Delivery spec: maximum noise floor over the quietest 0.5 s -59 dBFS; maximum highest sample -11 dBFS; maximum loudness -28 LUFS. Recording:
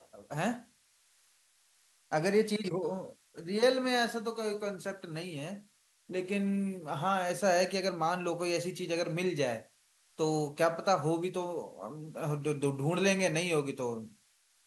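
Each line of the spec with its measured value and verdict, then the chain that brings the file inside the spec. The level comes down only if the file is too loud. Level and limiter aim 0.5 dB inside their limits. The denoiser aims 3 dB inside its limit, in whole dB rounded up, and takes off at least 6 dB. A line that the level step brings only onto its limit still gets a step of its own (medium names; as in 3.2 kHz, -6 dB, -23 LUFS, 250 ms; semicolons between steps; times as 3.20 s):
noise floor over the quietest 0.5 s -69 dBFS: pass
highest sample -14.5 dBFS: pass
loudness -32.5 LUFS: pass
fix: none needed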